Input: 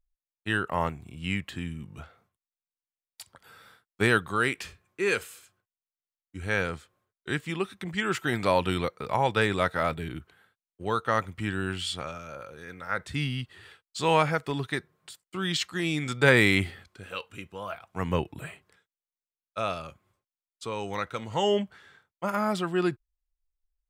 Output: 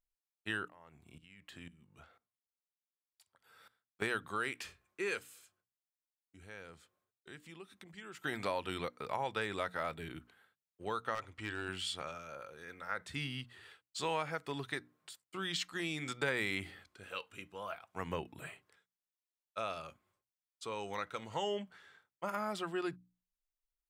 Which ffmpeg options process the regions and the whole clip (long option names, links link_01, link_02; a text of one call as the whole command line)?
ffmpeg -i in.wav -filter_complex "[0:a]asettb=1/sr,asplit=3[link_01][link_02][link_03];[link_01]atrim=end=0.684[link_04];[link_02]atrim=start=0.68:end=4.02,asetpts=PTS-STARTPTS,afade=type=in:duration=0.004:curve=qsin,afade=type=out:start_time=3.336:duration=0.004:curve=qsin,acompressor=threshold=-32dB:ratio=10:attack=3.2:release=140:knee=1:detection=peak,aeval=exprs='val(0)*pow(10,-18*if(lt(mod(-2*n/s,1),2*abs(-2)/1000),1-mod(-2*n/s,1)/(2*abs(-2)/1000),(mod(-2*n/s,1)-2*abs(-2)/1000)/(1-2*abs(-2)/1000))/20)':channel_layout=same[link_05];[link_03]atrim=start=4.016[link_06];[link_04][link_05]acrossfade=duration=0.004:curve1=hsin:curve2=qsin[link_07];[link_07][link_06]acrossfade=duration=0.004:curve1=qsin:curve2=hsin,asettb=1/sr,asplit=3[link_08][link_09][link_10];[link_08]atrim=end=5.194[link_11];[link_09]atrim=start=5.19:end=8.24,asetpts=PTS-STARTPTS,afade=type=in:duration=0.004:curve=qsin,afade=type=out:start_time=3.046:duration=0.004:curve=qsin,equalizer=frequency=1500:width_type=o:width=2.5:gain=-3.5,acompressor=threshold=-49dB:ratio=2:attack=3.2:release=140:knee=1:detection=peak[link_12];[link_10]atrim=start=8.236[link_13];[link_11][link_12]acrossfade=duration=0.004:curve1=hsin:curve2=qsin[link_14];[link_14][link_13]acrossfade=duration=0.004:curve1=qsin:curve2=hsin,asettb=1/sr,asplit=3[link_15][link_16][link_17];[link_15]atrim=end=11.154[link_18];[link_16]atrim=start=11.15:end=11.69,asetpts=PTS-STARTPTS,afade=type=in:duration=0.004:curve=qsin,afade=type=out:start_time=0.536:duration=0.004:curve=qsin,lowpass=7800,equalizer=frequency=180:width_type=o:width=0.5:gain=-13.5,volume=23dB,asoftclip=hard,volume=-23dB[link_19];[link_17]atrim=start=11.686[link_20];[link_18][link_19]acrossfade=duration=0.004:curve1=hsin:curve2=qsin[link_21];[link_21][link_20]acrossfade=duration=0.004:curve1=qsin:curve2=hsin,lowshelf=frequency=220:gain=-8.5,bandreject=frequency=60:width_type=h:width=6,bandreject=frequency=120:width_type=h:width=6,bandreject=frequency=180:width_type=h:width=6,bandreject=frequency=240:width_type=h:width=6,bandreject=frequency=300:width_type=h:width=6,acompressor=threshold=-29dB:ratio=2.5,volume=-5.5dB" out.wav